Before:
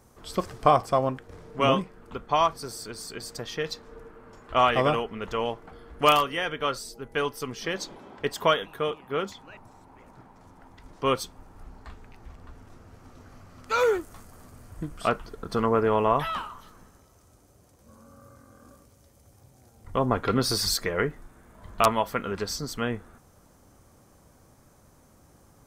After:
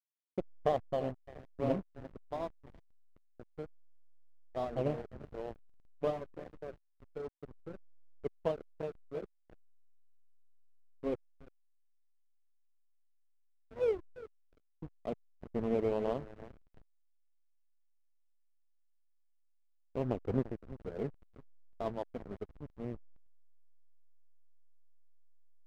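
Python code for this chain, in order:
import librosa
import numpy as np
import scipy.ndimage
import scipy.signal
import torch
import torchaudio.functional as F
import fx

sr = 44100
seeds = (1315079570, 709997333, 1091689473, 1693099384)

p1 = fx.spec_quant(x, sr, step_db=15)
p2 = scipy.signal.sosfilt(scipy.signal.cheby2(4, 60, 2300.0, 'lowpass', fs=sr, output='sos'), p1)
p3 = fx.power_curve(p2, sr, exponent=1.4)
p4 = p3 + fx.echo_feedback(p3, sr, ms=344, feedback_pct=53, wet_db=-13.5, dry=0)
p5 = fx.backlash(p4, sr, play_db=-31.5)
y = p5 * librosa.db_to_amplitude(-4.0)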